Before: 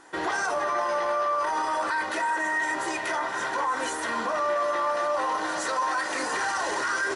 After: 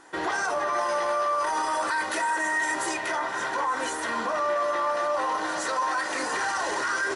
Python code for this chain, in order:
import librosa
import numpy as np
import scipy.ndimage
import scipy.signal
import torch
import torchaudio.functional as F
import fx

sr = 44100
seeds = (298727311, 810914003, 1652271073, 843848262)

y = fx.high_shelf(x, sr, hz=7100.0, db=11.5, at=(0.73, 2.94))